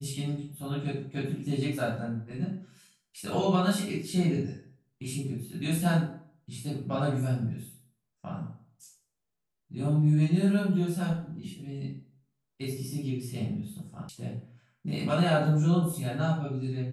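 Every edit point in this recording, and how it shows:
14.09 sound cut off

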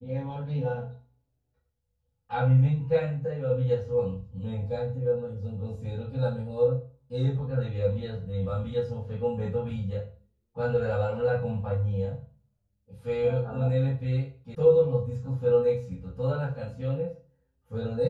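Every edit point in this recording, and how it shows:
14.55 sound cut off

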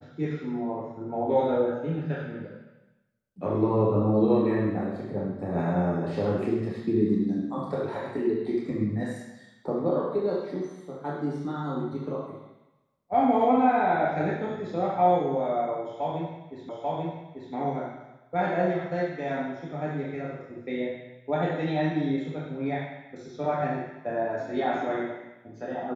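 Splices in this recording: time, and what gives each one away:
16.69 repeat of the last 0.84 s

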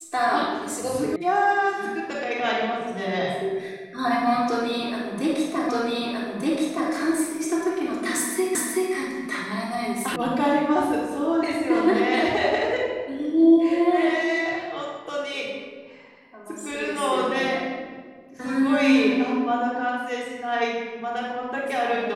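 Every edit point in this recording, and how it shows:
1.16 sound cut off
5.69 repeat of the last 1.22 s
8.55 repeat of the last 0.38 s
10.16 sound cut off

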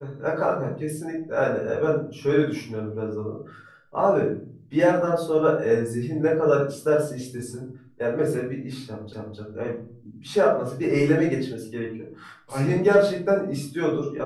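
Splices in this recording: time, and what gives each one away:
9.13 repeat of the last 0.26 s

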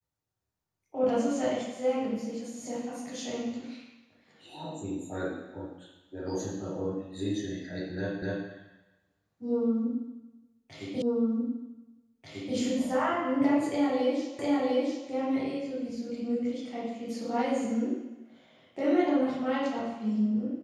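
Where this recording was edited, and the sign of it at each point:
8.22 repeat of the last 0.25 s
11.02 repeat of the last 1.54 s
14.39 repeat of the last 0.7 s

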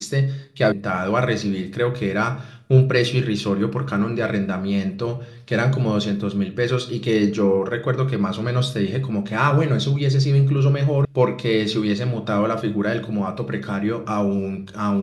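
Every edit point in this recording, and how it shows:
0.72 sound cut off
11.05 sound cut off

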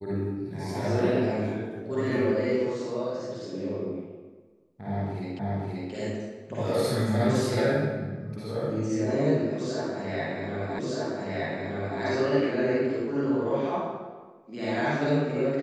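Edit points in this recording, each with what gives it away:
5.39 repeat of the last 0.53 s
10.79 repeat of the last 1.22 s

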